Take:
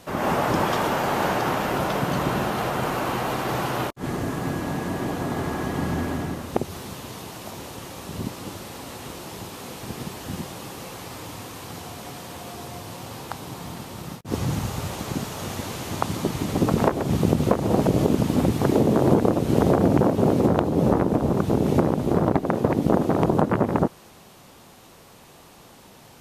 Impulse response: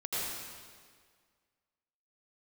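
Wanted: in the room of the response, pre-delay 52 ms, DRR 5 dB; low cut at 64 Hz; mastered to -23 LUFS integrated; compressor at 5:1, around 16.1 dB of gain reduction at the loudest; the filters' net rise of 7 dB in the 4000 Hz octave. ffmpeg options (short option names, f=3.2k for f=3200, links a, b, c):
-filter_complex "[0:a]highpass=64,equalizer=f=4k:t=o:g=9,acompressor=threshold=-33dB:ratio=5,asplit=2[a][b];[1:a]atrim=start_sample=2205,adelay=52[c];[b][c]afir=irnorm=-1:irlink=0,volume=-10.5dB[d];[a][d]amix=inputs=2:normalize=0,volume=12dB"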